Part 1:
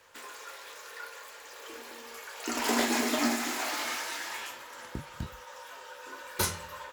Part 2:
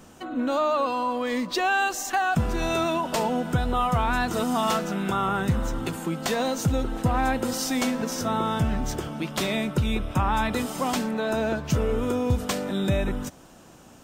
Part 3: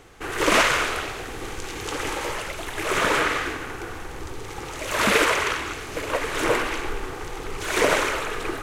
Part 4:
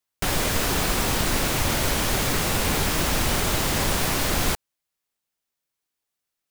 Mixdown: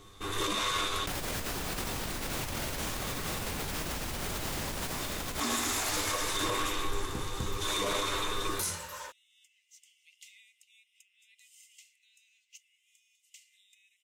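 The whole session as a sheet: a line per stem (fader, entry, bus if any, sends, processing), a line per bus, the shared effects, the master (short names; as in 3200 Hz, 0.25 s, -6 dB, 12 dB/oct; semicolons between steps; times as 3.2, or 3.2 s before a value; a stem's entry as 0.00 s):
-7.5 dB, 2.20 s, bus A, no send, bell 9200 Hz +10 dB 1.5 oct
-13.0 dB, 0.85 s, no bus, no send, compressor 12:1, threshold -28 dBFS, peak gain reduction 11.5 dB; rippled Chebyshev high-pass 2000 Hz, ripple 9 dB
-1.5 dB, 0.00 s, bus A, no send, bell 1100 Hz -14.5 dB 2.3 oct; resonator 100 Hz, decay 0.16 s, harmonics all, mix 90%; small resonant body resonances 1100/3600 Hz, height 17 dB, ringing for 20 ms
+0.5 dB, 0.85 s, bus A, no send, dry
bus A: 0.0 dB, negative-ratio compressor -32 dBFS, ratio -1; limiter -21.5 dBFS, peak gain reduction 7 dB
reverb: off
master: dry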